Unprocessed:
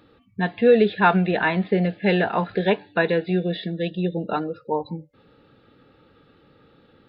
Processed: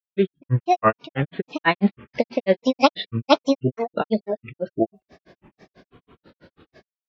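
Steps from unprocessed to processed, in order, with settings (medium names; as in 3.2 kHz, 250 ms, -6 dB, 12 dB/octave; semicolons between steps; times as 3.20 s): fade-in on the opening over 1.66 s; granulator 111 ms, grains 6.1 per s, spray 681 ms, pitch spread up and down by 7 st; trim +7 dB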